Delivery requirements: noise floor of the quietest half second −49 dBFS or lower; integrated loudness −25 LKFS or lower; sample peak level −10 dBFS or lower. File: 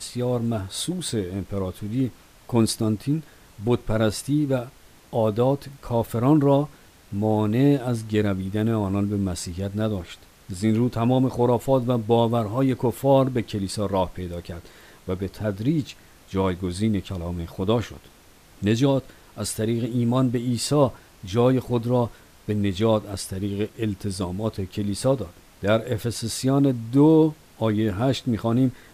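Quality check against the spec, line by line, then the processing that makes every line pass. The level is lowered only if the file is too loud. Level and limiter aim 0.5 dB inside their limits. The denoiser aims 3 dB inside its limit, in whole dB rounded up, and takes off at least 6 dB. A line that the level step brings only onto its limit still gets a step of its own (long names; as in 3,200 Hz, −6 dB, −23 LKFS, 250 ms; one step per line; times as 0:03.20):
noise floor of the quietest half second −51 dBFS: in spec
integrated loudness −24.0 LKFS: out of spec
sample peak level −7.0 dBFS: out of spec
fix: level −1.5 dB
brickwall limiter −10.5 dBFS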